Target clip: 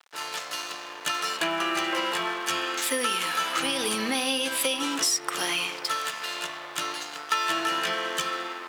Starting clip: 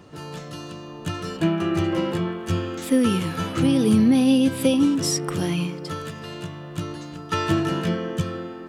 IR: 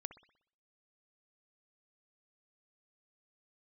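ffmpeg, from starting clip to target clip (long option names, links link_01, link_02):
-filter_complex "[0:a]asplit=2[link_01][link_02];[1:a]atrim=start_sample=2205[link_03];[link_02][link_03]afir=irnorm=-1:irlink=0,volume=13.5dB[link_04];[link_01][link_04]amix=inputs=2:normalize=0,aeval=exprs='sgn(val(0))*max(abs(val(0))-0.0316,0)':channel_layout=same,highpass=1000,acompressor=threshold=-24dB:ratio=4"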